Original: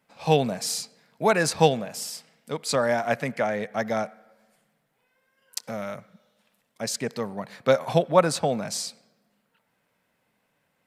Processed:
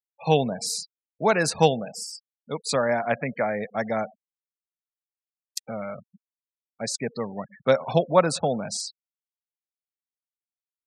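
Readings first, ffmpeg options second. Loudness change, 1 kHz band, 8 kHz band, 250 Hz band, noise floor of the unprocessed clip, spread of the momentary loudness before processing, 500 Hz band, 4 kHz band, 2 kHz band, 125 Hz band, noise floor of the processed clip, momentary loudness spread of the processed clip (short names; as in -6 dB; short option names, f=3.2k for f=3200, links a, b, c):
0.0 dB, 0.0 dB, -0.5 dB, 0.0 dB, -73 dBFS, 15 LU, 0.0 dB, -0.5 dB, 0.0 dB, 0.0 dB, under -85 dBFS, 15 LU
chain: -af "afftfilt=real='re*gte(hypot(re,im),0.02)':imag='im*gte(hypot(re,im),0.02)':win_size=1024:overlap=0.75"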